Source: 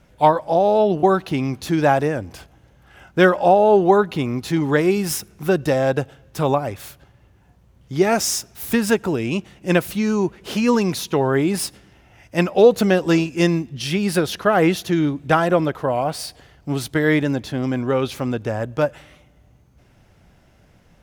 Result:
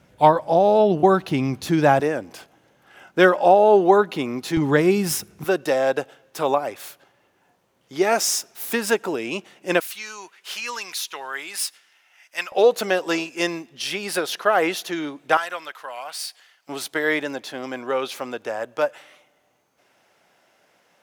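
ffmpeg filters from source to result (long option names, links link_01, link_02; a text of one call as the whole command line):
ffmpeg -i in.wav -af "asetnsamples=nb_out_samples=441:pad=0,asendcmd='2 highpass f 260;4.57 highpass f 100;5.44 highpass f 380;9.8 highpass f 1500;12.52 highpass f 510;15.37 highpass f 1500;16.69 highpass f 510',highpass=92" out.wav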